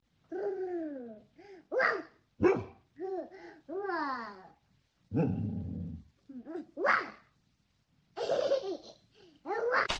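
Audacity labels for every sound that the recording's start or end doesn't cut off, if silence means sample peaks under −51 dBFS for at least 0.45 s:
5.110000	7.190000	sound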